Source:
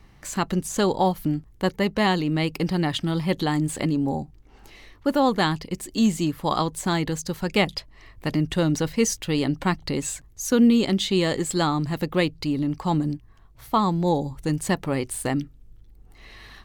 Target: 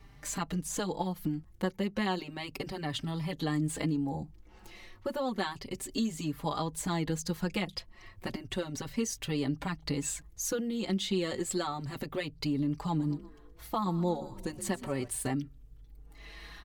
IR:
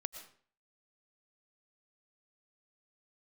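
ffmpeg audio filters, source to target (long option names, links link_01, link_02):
-filter_complex "[0:a]acompressor=threshold=-27dB:ratio=4,asplit=3[link_01][link_02][link_03];[link_01]afade=type=out:start_time=12.98:duration=0.02[link_04];[link_02]asplit=5[link_05][link_06][link_07][link_08][link_09];[link_06]adelay=122,afreqshift=48,volume=-16dB[link_10];[link_07]adelay=244,afreqshift=96,volume=-22.9dB[link_11];[link_08]adelay=366,afreqshift=144,volume=-29.9dB[link_12];[link_09]adelay=488,afreqshift=192,volume=-36.8dB[link_13];[link_05][link_10][link_11][link_12][link_13]amix=inputs=5:normalize=0,afade=type=in:start_time=12.98:duration=0.02,afade=type=out:start_time=15.07:duration=0.02[link_14];[link_03]afade=type=in:start_time=15.07:duration=0.02[link_15];[link_04][link_14][link_15]amix=inputs=3:normalize=0,asplit=2[link_16][link_17];[link_17]adelay=4.6,afreqshift=0.32[link_18];[link_16][link_18]amix=inputs=2:normalize=1"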